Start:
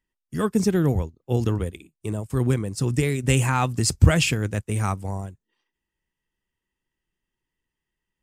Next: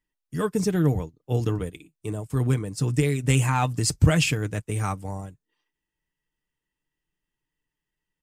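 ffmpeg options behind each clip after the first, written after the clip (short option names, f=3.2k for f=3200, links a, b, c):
-af "aecho=1:1:6.7:0.44,volume=-2.5dB"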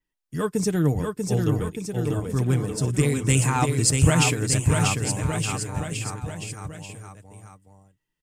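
-af "adynamicequalizer=threshold=0.00501:dfrequency=8200:dqfactor=1.4:tfrequency=8200:tqfactor=1.4:attack=5:release=100:ratio=0.375:range=3.5:mode=boostabove:tftype=bell,aecho=1:1:640|1216|1734|2201|2621:0.631|0.398|0.251|0.158|0.1"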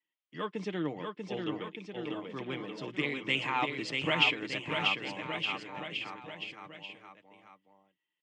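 -af "highpass=f=240:w=0.5412,highpass=f=240:w=1.3066,equalizer=f=250:t=q:w=4:g=-9,equalizer=f=430:t=q:w=4:g=-8,equalizer=f=710:t=q:w=4:g=-4,equalizer=f=1.5k:t=q:w=4:g=-6,equalizer=f=2.1k:t=q:w=4:g=5,equalizer=f=3.1k:t=q:w=4:g=8,lowpass=f=3.6k:w=0.5412,lowpass=f=3.6k:w=1.3066,volume=-4dB"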